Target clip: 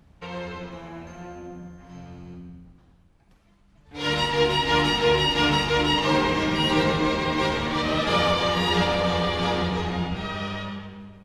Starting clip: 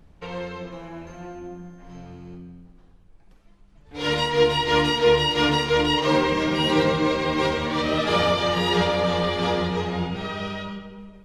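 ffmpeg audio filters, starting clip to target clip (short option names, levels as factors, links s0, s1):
-filter_complex "[0:a]highpass=44,equalizer=f=430:t=o:w=0.83:g=-4.5,asplit=6[s0][s1][s2][s3][s4][s5];[s1]adelay=109,afreqshift=-100,volume=0.282[s6];[s2]adelay=218,afreqshift=-200,volume=0.132[s7];[s3]adelay=327,afreqshift=-300,volume=0.0624[s8];[s4]adelay=436,afreqshift=-400,volume=0.0292[s9];[s5]adelay=545,afreqshift=-500,volume=0.0138[s10];[s0][s6][s7][s8][s9][s10]amix=inputs=6:normalize=0"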